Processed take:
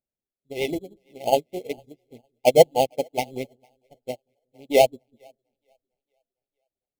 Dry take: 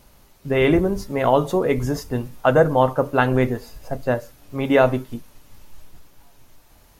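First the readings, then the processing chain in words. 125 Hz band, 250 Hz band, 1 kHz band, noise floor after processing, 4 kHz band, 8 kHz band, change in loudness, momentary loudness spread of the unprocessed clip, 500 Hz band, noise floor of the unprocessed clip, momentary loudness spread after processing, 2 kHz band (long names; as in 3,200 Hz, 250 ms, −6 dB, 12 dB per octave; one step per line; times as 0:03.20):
−15.0 dB, −12.0 dB, −4.0 dB, below −85 dBFS, +2.5 dB, can't be measured, −2.0 dB, 14 LU, −2.5 dB, −53 dBFS, 20 LU, −9.5 dB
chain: adaptive Wiener filter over 41 samples
pitch vibrato 10 Hz 69 cents
reverb reduction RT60 0.6 s
RIAA equalisation recording
in parallel at −4.5 dB: sample-rate reduction 3,700 Hz, jitter 0%
on the sum: linear-phase brick-wall band-stop 880–2,000 Hz
on a send: echo with a time of its own for lows and highs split 420 Hz, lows 187 ms, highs 455 ms, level −13.5 dB
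on the sum: expander for the loud parts 2.5 to 1, over −35 dBFS
level +3 dB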